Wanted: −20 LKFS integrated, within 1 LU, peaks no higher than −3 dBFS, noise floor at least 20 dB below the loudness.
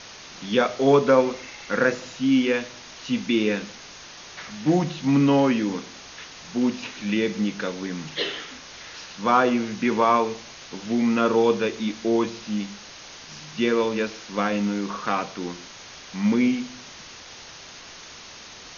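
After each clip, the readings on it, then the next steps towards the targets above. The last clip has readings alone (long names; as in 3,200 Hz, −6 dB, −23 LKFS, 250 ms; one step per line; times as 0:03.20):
background noise floor −43 dBFS; target noise floor −44 dBFS; integrated loudness −23.5 LKFS; sample peak −5.5 dBFS; target loudness −20.0 LKFS
→ broadband denoise 6 dB, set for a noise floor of −43 dBFS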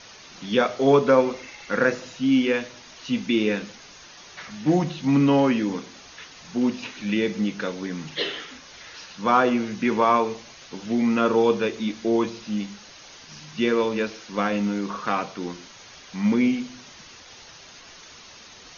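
background noise floor −46 dBFS; integrated loudness −23.5 LKFS; sample peak −5.5 dBFS; target loudness −20.0 LKFS
→ level +3.5 dB
brickwall limiter −3 dBFS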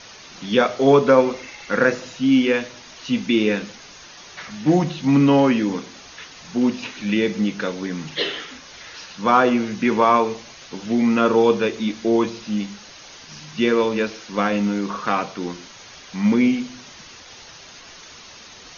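integrated loudness −20.0 LKFS; sample peak −3.0 dBFS; background noise floor −43 dBFS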